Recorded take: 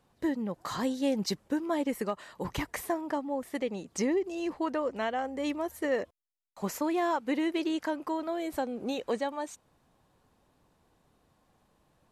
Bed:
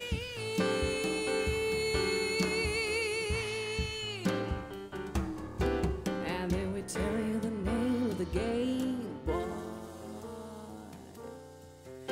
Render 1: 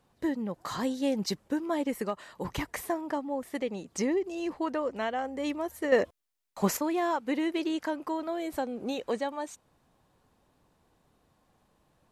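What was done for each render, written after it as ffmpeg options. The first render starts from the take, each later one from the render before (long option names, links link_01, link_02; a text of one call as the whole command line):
ffmpeg -i in.wav -filter_complex "[0:a]asettb=1/sr,asplit=3[link_01][link_02][link_03];[link_01]atrim=end=5.924[link_04];[link_02]atrim=start=5.92:end=6.77,asetpts=PTS-STARTPTS,afade=type=in:duration=0.004:curve=qsin,afade=type=out:start_time=0.846:duration=0.004:curve=qsin,acontrast=87[link_05];[link_03]atrim=start=6.766[link_06];[link_04][link_05]acrossfade=duration=0.004:curve1=hsin:curve2=qsin[link_07];[link_07][link_06]acrossfade=duration=0.004:curve1=qsin:curve2=hsin" out.wav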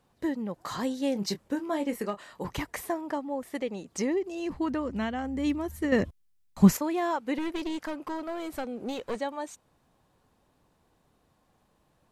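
ffmpeg -i in.wav -filter_complex "[0:a]asettb=1/sr,asplit=3[link_01][link_02][link_03];[link_01]atrim=end=1.134[link_04];[link_02]atrim=start=1.13:end=2.45,asetpts=PTS-STARTPTS,afade=type=in:duration=0.004:curve=qsin,afade=type=out:start_time=1.316:duration=0.004:curve=qsin,asplit=2[link_05][link_06];[link_06]adelay=25,volume=-10dB[link_07];[link_05][link_07]amix=inputs=2:normalize=0,atrim=end_sample=58212[link_08];[link_03]atrim=start=2.446[link_09];[link_04][link_08]acrossfade=duration=0.004:curve1=hsin:curve2=qsin[link_10];[link_10][link_09]acrossfade=duration=0.004:curve1=qsin:curve2=hsin,asplit=3[link_11][link_12][link_13];[link_11]afade=type=out:start_time=4.49:duration=0.02[link_14];[link_12]asubboost=boost=10.5:cutoff=170,afade=type=in:start_time=4.49:duration=0.02,afade=type=out:start_time=6.72:duration=0.02[link_15];[link_13]afade=type=in:start_time=6.72:duration=0.02[link_16];[link_14][link_15][link_16]amix=inputs=3:normalize=0,asettb=1/sr,asplit=3[link_17][link_18][link_19];[link_17]atrim=end=7.384[link_20];[link_18]atrim=start=7.38:end=9.18,asetpts=PTS-STARTPTS,afade=type=in:duration=0.004:curve=qsin,afade=type=out:start_time=1.796:duration=0.004:curve=qsin,aeval=exprs='clip(val(0),-1,0.0211)':channel_layout=same[link_21];[link_19]atrim=start=9.176[link_22];[link_20][link_21]acrossfade=duration=0.004:curve1=hsin:curve2=qsin[link_23];[link_23][link_22]acrossfade=duration=0.004:curve1=qsin:curve2=hsin" out.wav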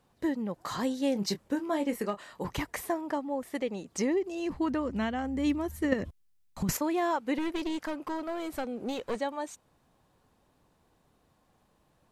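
ffmpeg -i in.wav -filter_complex "[0:a]asettb=1/sr,asplit=3[link_01][link_02][link_03];[link_01]atrim=end=5.934[link_04];[link_02]atrim=start=5.93:end=6.69,asetpts=PTS-STARTPTS,afade=type=in:duration=0.004:curve=qsin,afade=type=out:start_time=0.756:duration=0.004:curve=qsin,acompressor=threshold=-27dB:ratio=10:attack=3.2:release=140:knee=1:detection=peak[link_05];[link_03]atrim=start=6.686[link_06];[link_04][link_05]acrossfade=duration=0.004:curve1=hsin:curve2=qsin[link_07];[link_07][link_06]acrossfade=duration=0.004:curve1=qsin:curve2=hsin" out.wav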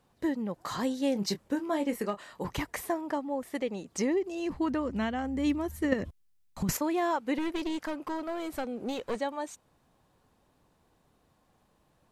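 ffmpeg -i in.wav -af anull out.wav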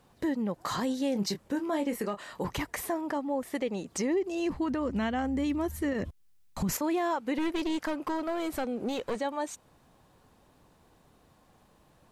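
ffmpeg -i in.wav -filter_complex "[0:a]asplit=2[link_01][link_02];[link_02]acompressor=threshold=-40dB:ratio=6,volume=0.5dB[link_03];[link_01][link_03]amix=inputs=2:normalize=0,alimiter=limit=-22dB:level=0:latency=1:release=34" out.wav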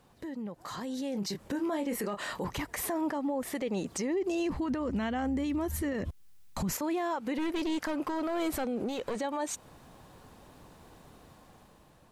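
ffmpeg -i in.wav -af "alimiter=level_in=9dB:limit=-24dB:level=0:latency=1:release=98,volume=-9dB,dynaudnorm=framelen=310:gausssize=7:maxgain=8dB" out.wav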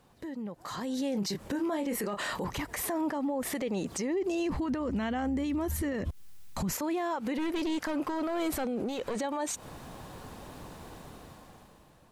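ffmpeg -i in.wav -af "dynaudnorm=framelen=220:gausssize=11:maxgain=8.5dB,alimiter=level_in=1dB:limit=-24dB:level=0:latency=1:release=91,volume=-1dB" out.wav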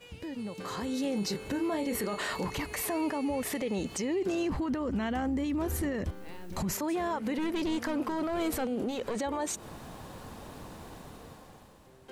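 ffmpeg -i in.wav -i bed.wav -filter_complex "[1:a]volume=-12.5dB[link_01];[0:a][link_01]amix=inputs=2:normalize=0" out.wav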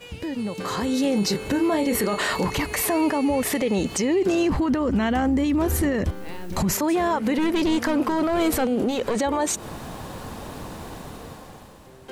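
ffmpeg -i in.wav -af "volume=9.5dB" out.wav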